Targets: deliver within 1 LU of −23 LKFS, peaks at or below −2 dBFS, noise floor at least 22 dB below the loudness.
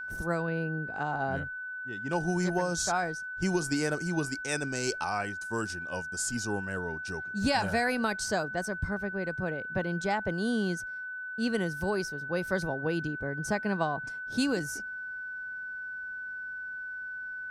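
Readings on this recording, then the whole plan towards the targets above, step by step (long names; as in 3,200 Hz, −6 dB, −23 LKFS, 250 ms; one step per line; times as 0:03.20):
interfering tone 1,500 Hz; level of the tone −36 dBFS; integrated loudness −32.0 LKFS; sample peak −15.0 dBFS; target loudness −23.0 LKFS
→ notch filter 1,500 Hz, Q 30
level +9 dB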